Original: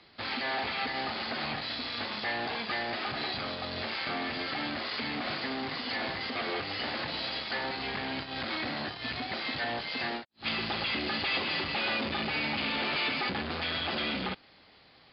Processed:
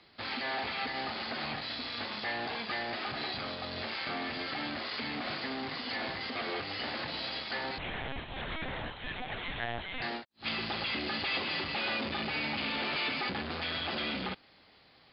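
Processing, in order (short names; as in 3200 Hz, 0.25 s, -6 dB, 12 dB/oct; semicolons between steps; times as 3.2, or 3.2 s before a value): 7.78–10.02 LPC vocoder at 8 kHz pitch kept; gain -2.5 dB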